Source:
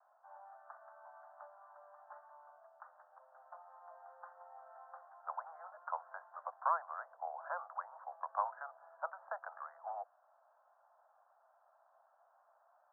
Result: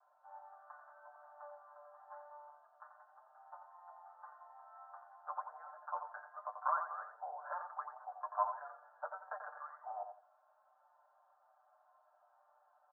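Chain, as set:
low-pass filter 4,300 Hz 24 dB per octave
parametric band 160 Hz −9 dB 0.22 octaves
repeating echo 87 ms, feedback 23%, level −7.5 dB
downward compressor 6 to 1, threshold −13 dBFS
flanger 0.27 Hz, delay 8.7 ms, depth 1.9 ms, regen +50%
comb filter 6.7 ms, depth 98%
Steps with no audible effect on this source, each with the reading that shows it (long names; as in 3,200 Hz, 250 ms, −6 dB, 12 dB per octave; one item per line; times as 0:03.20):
low-pass filter 4,300 Hz: nothing at its input above 1,800 Hz
parametric band 160 Hz: nothing at its input below 450 Hz
downward compressor, threshold −13 dBFS: peak of its input −21.0 dBFS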